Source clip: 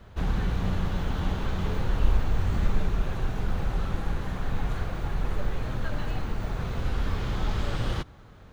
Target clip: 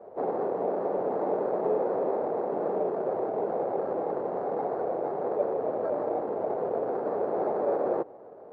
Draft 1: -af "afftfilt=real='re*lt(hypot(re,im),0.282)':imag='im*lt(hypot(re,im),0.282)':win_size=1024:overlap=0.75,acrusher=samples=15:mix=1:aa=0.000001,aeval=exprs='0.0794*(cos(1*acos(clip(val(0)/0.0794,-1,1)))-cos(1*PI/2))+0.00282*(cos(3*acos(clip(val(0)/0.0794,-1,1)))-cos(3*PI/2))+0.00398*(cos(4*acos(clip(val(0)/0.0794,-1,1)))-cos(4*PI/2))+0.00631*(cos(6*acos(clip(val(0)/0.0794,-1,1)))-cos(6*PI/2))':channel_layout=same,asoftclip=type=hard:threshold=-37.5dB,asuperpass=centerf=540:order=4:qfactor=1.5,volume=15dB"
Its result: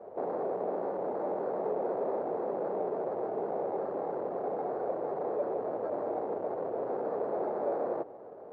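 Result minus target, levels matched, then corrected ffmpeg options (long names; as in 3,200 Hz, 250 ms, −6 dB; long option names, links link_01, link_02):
hard clipping: distortion +22 dB
-af "afftfilt=real='re*lt(hypot(re,im),0.282)':imag='im*lt(hypot(re,im),0.282)':win_size=1024:overlap=0.75,acrusher=samples=15:mix=1:aa=0.000001,aeval=exprs='0.0794*(cos(1*acos(clip(val(0)/0.0794,-1,1)))-cos(1*PI/2))+0.00282*(cos(3*acos(clip(val(0)/0.0794,-1,1)))-cos(3*PI/2))+0.00398*(cos(4*acos(clip(val(0)/0.0794,-1,1)))-cos(4*PI/2))+0.00631*(cos(6*acos(clip(val(0)/0.0794,-1,1)))-cos(6*PI/2))':channel_layout=same,asoftclip=type=hard:threshold=-25.5dB,asuperpass=centerf=540:order=4:qfactor=1.5,volume=15dB"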